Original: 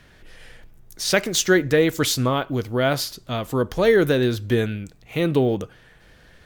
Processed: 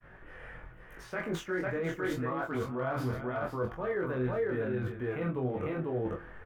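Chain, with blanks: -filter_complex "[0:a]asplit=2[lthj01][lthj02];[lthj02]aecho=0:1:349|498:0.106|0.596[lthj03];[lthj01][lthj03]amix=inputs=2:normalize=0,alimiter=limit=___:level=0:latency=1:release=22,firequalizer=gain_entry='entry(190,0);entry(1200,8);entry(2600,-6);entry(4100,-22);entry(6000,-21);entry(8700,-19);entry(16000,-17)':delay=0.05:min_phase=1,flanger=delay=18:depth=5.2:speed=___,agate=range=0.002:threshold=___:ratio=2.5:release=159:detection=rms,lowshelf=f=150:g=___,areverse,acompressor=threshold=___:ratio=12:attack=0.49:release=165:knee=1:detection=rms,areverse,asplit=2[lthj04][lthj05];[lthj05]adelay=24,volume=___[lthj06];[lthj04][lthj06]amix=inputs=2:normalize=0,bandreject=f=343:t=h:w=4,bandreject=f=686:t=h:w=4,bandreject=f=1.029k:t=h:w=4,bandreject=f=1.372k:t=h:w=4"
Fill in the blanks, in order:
0.355, 0.83, 0.00316, 2, 0.0398, 0.562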